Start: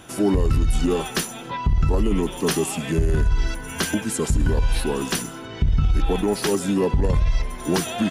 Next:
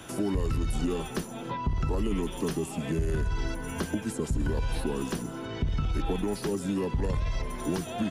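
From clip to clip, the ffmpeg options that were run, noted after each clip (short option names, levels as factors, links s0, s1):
-filter_complex "[0:a]bandreject=f=750:w=24,acrossover=split=83|300|1000[s0][s1][s2][s3];[s0]acompressor=threshold=0.0316:ratio=4[s4];[s1]acompressor=threshold=0.0251:ratio=4[s5];[s2]acompressor=threshold=0.0178:ratio=4[s6];[s3]acompressor=threshold=0.00708:ratio=4[s7];[s4][s5][s6][s7]amix=inputs=4:normalize=0"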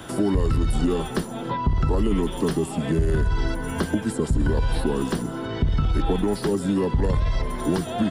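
-af "equalizer=f=2500:t=o:w=0.33:g=-7,equalizer=f=6300:t=o:w=0.33:g=-9,equalizer=f=12500:t=o:w=0.33:g=-11,volume=2.24"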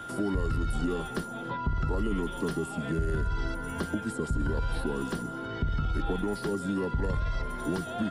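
-af "aeval=exprs='val(0)+0.0282*sin(2*PI*1400*n/s)':c=same,volume=0.398"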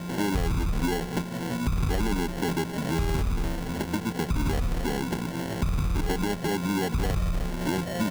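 -filter_complex "[0:a]asplit=2[s0][s1];[s1]alimiter=level_in=1.68:limit=0.0631:level=0:latency=1:release=188,volume=0.596,volume=1[s2];[s0][s2]amix=inputs=2:normalize=0,acrusher=samples=36:mix=1:aa=0.000001"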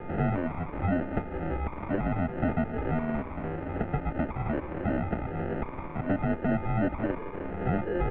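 -af "equalizer=f=570:t=o:w=1.5:g=8,highpass=f=190:t=q:w=0.5412,highpass=f=190:t=q:w=1.307,lowpass=f=2500:t=q:w=0.5176,lowpass=f=2500:t=q:w=0.7071,lowpass=f=2500:t=q:w=1.932,afreqshift=-170,volume=0.75"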